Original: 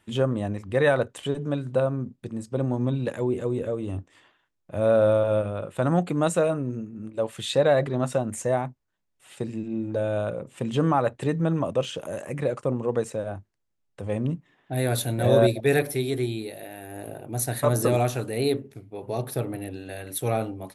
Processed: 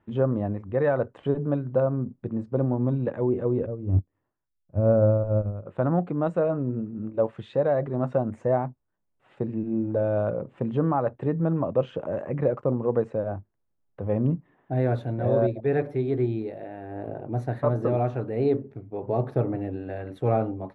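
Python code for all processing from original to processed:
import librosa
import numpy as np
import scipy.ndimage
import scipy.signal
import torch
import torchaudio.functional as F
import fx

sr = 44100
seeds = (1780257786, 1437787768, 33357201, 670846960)

y = fx.chain(x, sr, fx.riaa(side='playback'),
    fx.upward_expand(threshold_db=-29.0, expansion=2.5), at=(3.66, 5.66))
y = scipy.signal.sosfilt(scipy.signal.butter(2, 1200.0, 'lowpass', fs=sr, output='sos'), y)
y = fx.rider(y, sr, range_db=4, speed_s=0.5)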